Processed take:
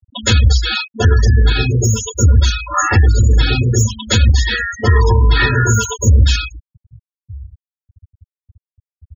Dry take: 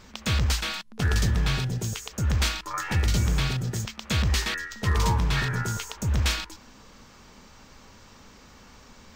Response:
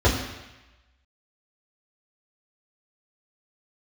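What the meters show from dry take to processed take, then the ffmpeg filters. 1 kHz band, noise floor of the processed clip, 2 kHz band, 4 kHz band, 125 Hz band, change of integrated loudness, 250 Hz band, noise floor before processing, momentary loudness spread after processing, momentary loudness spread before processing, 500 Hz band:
+11.0 dB, below −85 dBFS, +11.5 dB, +10.0 dB, +13.5 dB, +13.0 dB, +10.0 dB, −51 dBFS, 5 LU, 7 LU, +15.0 dB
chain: -filter_complex "[0:a]aemphasis=mode=production:type=riaa,bandreject=frequency=302.1:width_type=h:width=4,bandreject=frequency=604.2:width_type=h:width=4,bandreject=frequency=906.3:width_type=h:width=4,bandreject=frequency=1208.4:width_type=h:width=4,bandreject=frequency=1510.5:width_type=h:width=4,bandreject=frequency=1812.6:width_type=h:width=4,bandreject=frequency=2114.7:width_type=h:width=4,bandreject=frequency=2416.8:width_type=h:width=4,bandreject=frequency=2718.9:width_type=h:width=4,bandreject=frequency=3021:width_type=h:width=4,bandreject=frequency=3323.1:width_type=h:width=4,bandreject=frequency=3625.2:width_type=h:width=4,bandreject=frequency=3927.3:width_type=h:width=4,bandreject=frequency=4229.4:width_type=h:width=4,bandreject=frequency=4531.5:width_type=h:width=4,bandreject=frequency=4833.6:width_type=h:width=4,bandreject=frequency=5135.7:width_type=h:width=4,bandreject=frequency=5437.8:width_type=h:width=4,bandreject=frequency=5739.9:width_type=h:width=4[link_01];[1:a]atrim=start_sample=2205,atrim=end_sample=4410[link_02];[link_01][link_02]afir=irnorm=-1:irlink=0,alimiter=limit=-1.5dB:level=0:latency=1:release=474,asplit=2[link_03][link_04];[link_04]adelay=1224,volume=-22dB,highshelf=frequency=4000:gain=-27.6[link_05];[link_03][link_05]amix=inputs=2:normalize=0,afftfilt=real='re*gte(hypot(re,im),0.251)':imag='im*gte(hypot(re,im),0.251)':win_size=1024:overlap=0.75"

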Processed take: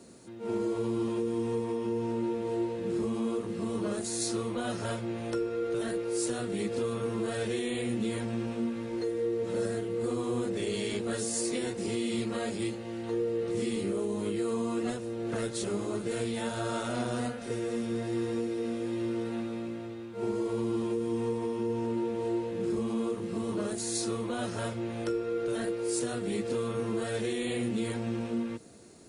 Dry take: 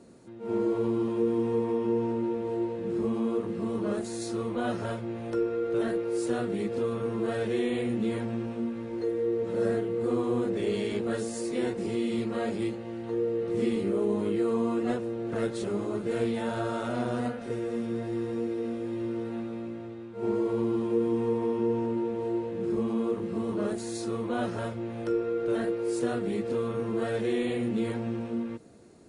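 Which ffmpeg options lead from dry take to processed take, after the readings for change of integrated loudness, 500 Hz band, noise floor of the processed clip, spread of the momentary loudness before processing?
−2.5 dB, −3.0 dB, −40 dBFS, 6 LU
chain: -filter_complex "[0:a]highshelf=frequency=2800:gain=10,acrossover=split=130|4600[link_01][link_02][link_03];[link_02]alimiter=limit=-23.5dB:level=0:latency=1:release=419[link_04];[link_01][link_04][link_03]amix=inputs=3:normalize=0"

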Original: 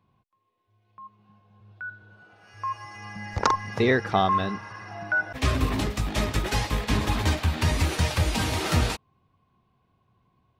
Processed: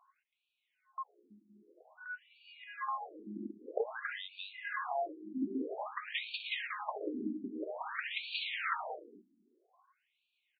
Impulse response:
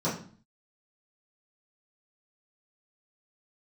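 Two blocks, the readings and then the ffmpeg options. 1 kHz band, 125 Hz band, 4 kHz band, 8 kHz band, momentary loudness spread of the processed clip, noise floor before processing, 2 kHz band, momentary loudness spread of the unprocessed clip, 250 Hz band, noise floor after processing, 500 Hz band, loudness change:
−12.5 dB, below −35 dB, −10.0 dB, below −40 dB, 11 LU, −70 dBFS, −10.5 dB, 15 LU, −11.5 dB, −84 dBFS, −11.5 dB, −13.5 dB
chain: -af "highshelf=frequency=6600:gain=-9,acompressor=threshold=-31dB:ratio=6,aecho=1:1:250:0.211,afftfilt=real='re*between(b*sr/1024,260*pow(3300/260,0.5+0.5*sin(2*PI*0.51*pts/sr))/1.41,260*pow(3300/260,0.5+0.5*sin(2*PI*0.51*pts/sr))*1.41)':imag='im*between(b*sr/1024,260*pow(3300/260,0.5+0.5*sin(2*PI*0.51*pts/sr))/1.41,260*pow(3300/260,0.5+0.5*sin(2*PI*0.51*pts/sr))*1.41)':win_size=1024:overlap=0.75,volume=6dB"

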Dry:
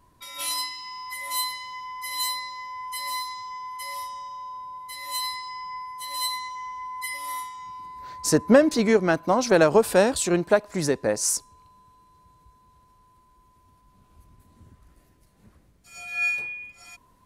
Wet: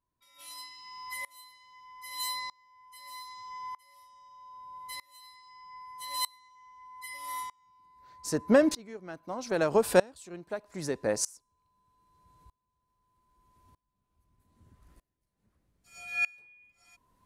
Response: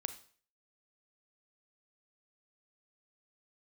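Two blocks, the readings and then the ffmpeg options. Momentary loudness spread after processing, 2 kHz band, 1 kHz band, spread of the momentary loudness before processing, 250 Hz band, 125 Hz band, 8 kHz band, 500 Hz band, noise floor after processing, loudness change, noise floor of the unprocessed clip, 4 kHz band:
23 LU, −8.0 dB, −9.5 dB, 19 LU, −8.0 dB, −10.0 dB, −9.5 dB, −7.5 dB, −82 dBFS, −6.5 dB, −60 dBFS, −9.5 dB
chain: -af "aeval=exprs='val(0)*pow(10,-27*if(lt(mod(-0.8*n/s,1),2*abs(-0.8)/1000),1-mod(-0.8*n/s,1)/(2*abs(-0.8)/1000),(mod(-0.8*n/s,1)-2*abs(-0.8)/1000)/(1-2*abs(-0.8)/1000))/20)':channel_layout=same,volume=-1.5dB"

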